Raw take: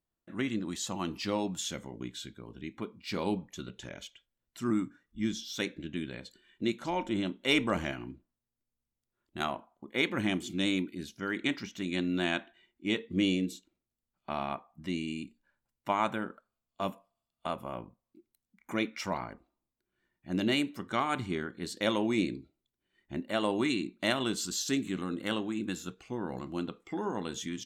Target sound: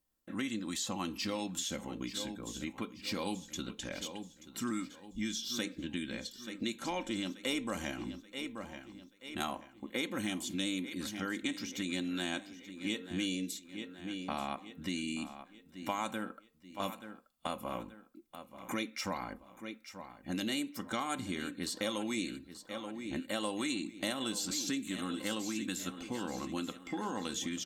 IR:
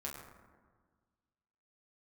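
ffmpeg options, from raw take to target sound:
-filter_complex "[0:a]aecho=1:1:3.8:0.45,aecho=1:1:881|1762|2643|3524:0.15|0.0613|0.0252|0.0103,acrossover=split=1200|4400[link_01][link_02][link_03];[link_01]acompressor=threshold=-38dB:ratio=4[link_04];[link_02]acompressor=threshold=-45dB:ratio=4[link_05];[link_03]acompressor=threshold=-47dB:ratio=4[link_06];[link_04][link_05][link_06]amix=inputs=3:normalize=0,highshelf=frequency=5800:gain=8,asplit=2[link_07][link_08];[link_08]asoftclip=type=hard:threshold=-28dB,volume=-12dB[link_09];[link_07][link_09]amix=inputs=2:normalize=0"

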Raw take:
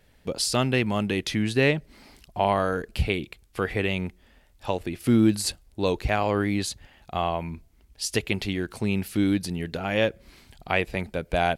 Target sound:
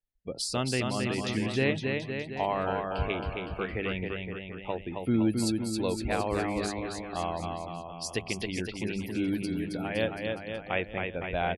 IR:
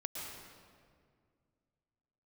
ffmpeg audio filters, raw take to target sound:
-af "afftdn=noise_reduction=31:noise_floor=-38,bandreject=frequency=50:width_type=h:width=6,bandreject=frequency=100:width_type=h:width=6,bandreject=frequency=150:width_type=h:width=6,bandreject=frequency=200:width_type=h:width=6,aecho=1:1:270|513|731.7|928.5|1106:0.631|0.398|0.251|0.158|0.1,volume=-6.5dB"

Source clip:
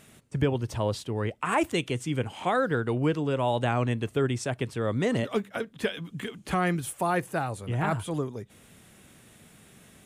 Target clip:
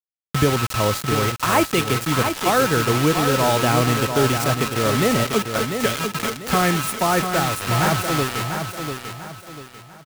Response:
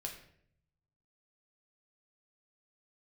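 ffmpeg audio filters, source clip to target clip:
-af "aeval=exprs='val(0)+0.0224*sin(2*PI*1300*n/s)':channel_layout=same,acrusher=bits=4:mix=0:aa=0.000001,aecho=1:1:694|1388|2082|2776:0.447|0.156|0.0547|0.0192,volume=6.5dB"

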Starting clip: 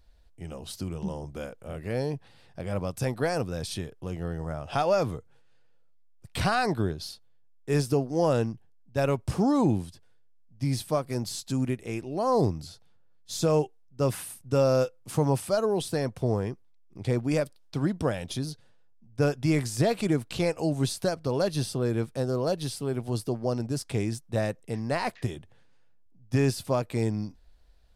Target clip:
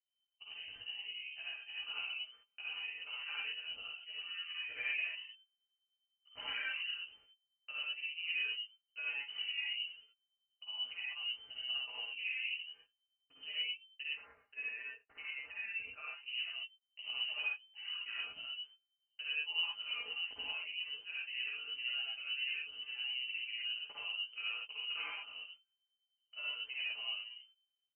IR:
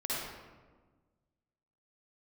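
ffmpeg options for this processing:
-filter_complex "[0:a]asettb=1/sr,asplit=3[link_01][link_02][link_03];[link_01]atrim=end=14.044[link_04];[link_02]atrim=start=14.04:end=16.26,asetpts=PTS-STARTPTS,afade=type=in:duration=0.004:curve=qsin,afade=type=out:start_time=2.216:duration=0.004:curve=qsin,highpass=frequency=1300:poles=1[link_05];[link_03]atrim=start=16.256[link_06];[link_04][link_05]acrossfade=duration=0.004:curve1=hsin:curve2=qsin[link_07];[link_07][link_06]acrossfade=duration=0.004:curve1=qsin:curve2=hsin,agate=range=-32dB:threshold=-45dB:ratio=16:detection=peak,aecho=1:1:5.3:0.68,acompressor=threshold=-43dB:ratio=2.5,flanger=delay=16:depth=2.6:speed=0.18,tremolo=f=10:d=0.85[link_08];[1:a]atrim=start_sample=2205,atrim=end_sample=6174[link_09];[link_08][link_09]afir=irnorm=-1:irlink=0,lowpass=frequency=2600:width_type=q:width=0.5098,lowpass=frequency=2600:width_type=q:width=0.6013,lowpass=frequency=2600:width_type=q:width=0.9,lowpass=frequency=2600:width_type=q:width=2.563,afreqshift=-3100,volume=1dB"

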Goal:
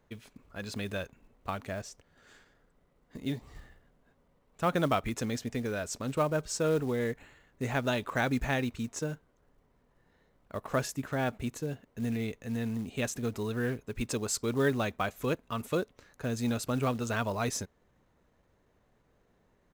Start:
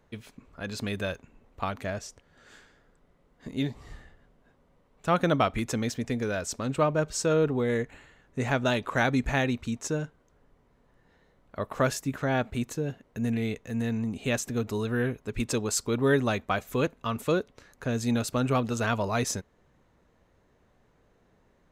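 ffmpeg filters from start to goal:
ffmpeg -i in.wav -af "acrusher=bits=6:mode=log:mix=0:aa=0.000001,atempo=1.1,volume=-4dB" out.wav

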